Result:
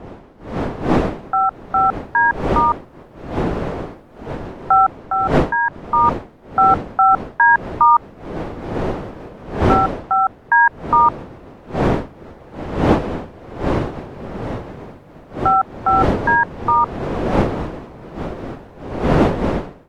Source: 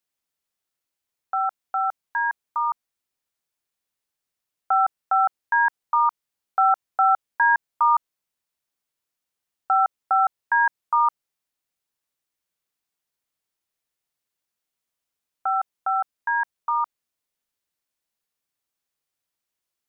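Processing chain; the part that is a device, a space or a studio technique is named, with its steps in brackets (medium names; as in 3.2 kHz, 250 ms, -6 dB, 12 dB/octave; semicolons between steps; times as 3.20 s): smartphone video outdoors (wind noise 520 Hz -29 dBFS; level rider gain up to 11 dB; trim -1 dB; AAC 64 kbps 44.1 kHz)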